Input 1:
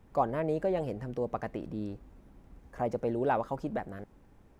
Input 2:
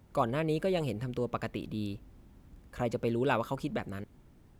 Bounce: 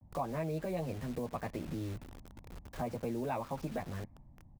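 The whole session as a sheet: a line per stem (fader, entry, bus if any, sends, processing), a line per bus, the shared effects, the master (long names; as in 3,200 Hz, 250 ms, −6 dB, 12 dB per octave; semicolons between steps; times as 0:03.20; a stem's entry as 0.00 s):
−0.5 dB, 0.00 s, no send, high-shelf EQ 2,200 Hz −2.5 dB; brickwall limiter −24 dBFS, peak gain reduction 9 dB; bit-depth reduction 8 bits, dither none
+2.5 dB, 11 ms, no send, low-pass that shuts in the quiet parts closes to 650 Hz, open at −25.5 dBFS; high-shelf EQ 3,200 Hz −11 dB; phaser with its sweep stopped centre 2,100 Hz, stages 8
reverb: not used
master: downward compressor 2.5 to 1, threshold −36 dBFS, peak gain reduction 9.5 dB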